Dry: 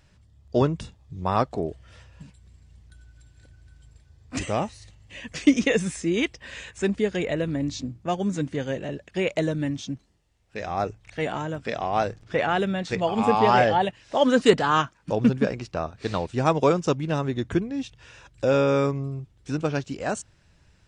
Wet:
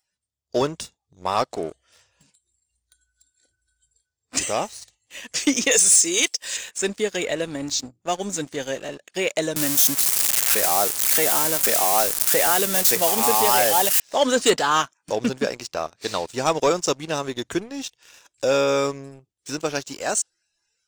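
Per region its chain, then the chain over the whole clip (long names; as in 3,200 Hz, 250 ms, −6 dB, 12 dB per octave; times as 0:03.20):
0:05.71–0:06.57: bass and treble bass −9 dB, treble +12 dB + notch filter 230 Hz, Q 6.9
0:09.56–0:14.00: spike at every zero crossing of −20 dBFS + multiband upward and downward compressor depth 70%
whole clip: noise reduction from a noise print of the clip's start 16 dB; bass and treble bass −13 dB, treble +14 dB; leveller curve on the samples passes 2; level −5 dB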